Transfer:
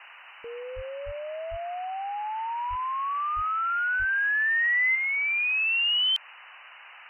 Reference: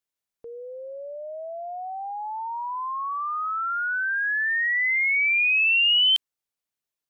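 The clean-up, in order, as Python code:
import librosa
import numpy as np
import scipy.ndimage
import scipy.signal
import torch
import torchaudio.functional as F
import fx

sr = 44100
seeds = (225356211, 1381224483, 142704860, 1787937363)

y = fx.fix_deplosive(x, sr, at_s=(0.75, 1.05, 1.5, 2.69, 3.35, 3.98))
y = fx.noise_reduce(y, sr, print_start_s=6.17, print_end_s=6.67, reduce_db=30.0)
y = fx.gain(y, sr, db=fx.steps((0.0, 0.0), (4.95, 5.0)))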